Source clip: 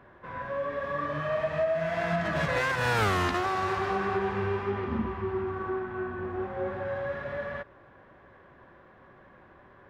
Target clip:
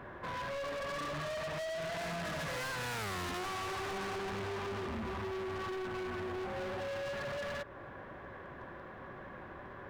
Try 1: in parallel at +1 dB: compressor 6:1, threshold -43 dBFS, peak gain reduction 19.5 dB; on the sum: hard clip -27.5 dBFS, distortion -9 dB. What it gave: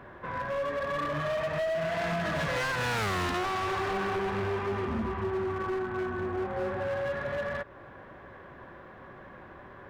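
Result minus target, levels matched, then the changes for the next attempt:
hard clip: distortion -6 dB
change: hard clip -37.5 dBFS, distortion -4 dB

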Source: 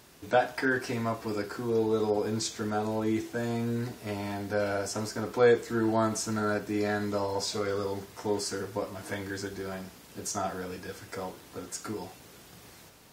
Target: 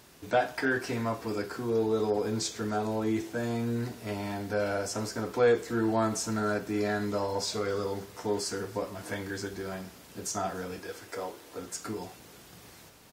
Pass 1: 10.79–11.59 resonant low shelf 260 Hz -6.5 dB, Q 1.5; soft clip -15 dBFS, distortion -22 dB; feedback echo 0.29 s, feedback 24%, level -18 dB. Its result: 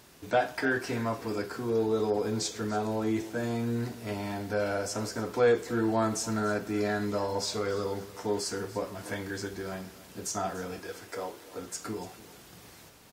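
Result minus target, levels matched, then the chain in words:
echo-to-direct +7 dB
10.79–11.59 resonant low shelf 260 Hz -6.5 dB, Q 1.5; soft clip -15 dBFS, distortion -22 dB; feedback echo 0.29 s, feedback 24%, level -25 dB

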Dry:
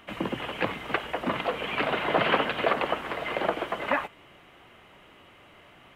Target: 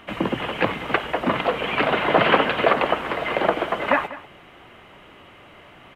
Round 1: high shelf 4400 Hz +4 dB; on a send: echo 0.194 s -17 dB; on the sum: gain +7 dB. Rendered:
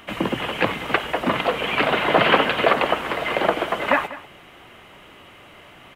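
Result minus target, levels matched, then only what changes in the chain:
8000 Hz band +6.5 dB
change: high shelf 4400 Hz -5.5 dB

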